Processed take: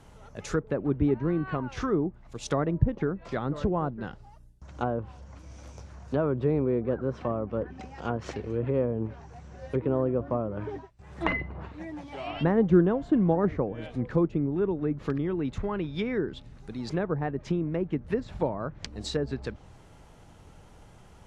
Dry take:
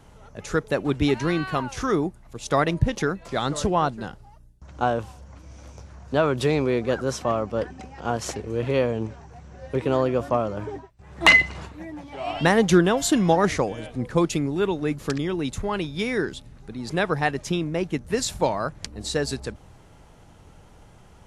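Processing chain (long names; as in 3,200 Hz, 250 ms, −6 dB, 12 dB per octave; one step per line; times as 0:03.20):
treble cut that deepens with the level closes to 880 Hz, closed at −20.5 dBFS
dynamic equaliser 760 Hz, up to −6 dB, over −37 dBFS, Q 1.4
level −2 dB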